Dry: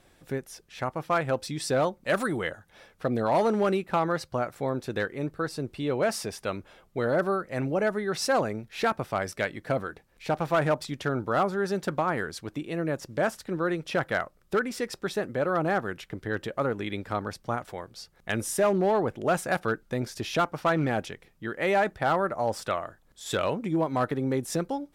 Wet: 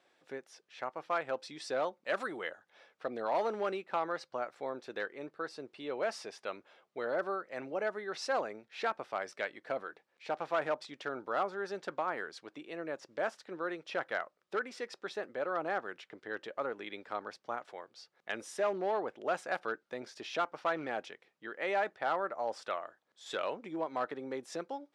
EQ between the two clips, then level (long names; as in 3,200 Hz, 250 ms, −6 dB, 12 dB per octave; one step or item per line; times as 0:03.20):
band-pass filter 410–5,200 Hz
−7.0 dB